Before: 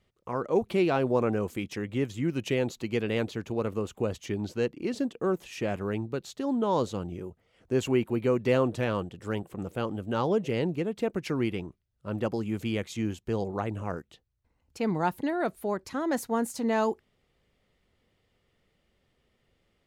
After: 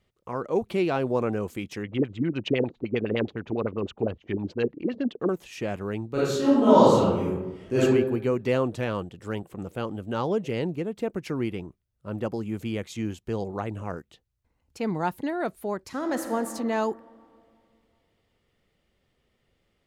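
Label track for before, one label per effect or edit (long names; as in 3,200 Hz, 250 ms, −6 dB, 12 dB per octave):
1.830000	5.290000	auto-filter low-pass sine 9.8 Hz 260–4,000 Hz
6.120000	7.810000	thrown reverb, RT60 1 s, DRR −10.5 dB
10.710000	12.840000	parametric band 3,600 Hz −3 dB 2.3 octaves
15.810000	16.360000	thrown reverb, RT60 2.4 s, DRR 5 dB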